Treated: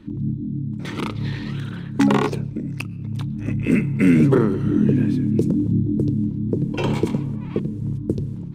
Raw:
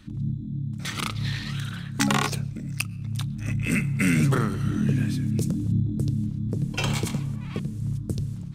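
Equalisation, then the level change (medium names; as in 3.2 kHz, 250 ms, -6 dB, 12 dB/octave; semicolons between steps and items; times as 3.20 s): tone controls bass -13 dB, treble -11 dB; resonant low shelf 560 Hz +13.5 dB, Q 1.5; peaking EQ 930 Hz +11.5 dB 0.34 oct; 0.0 dB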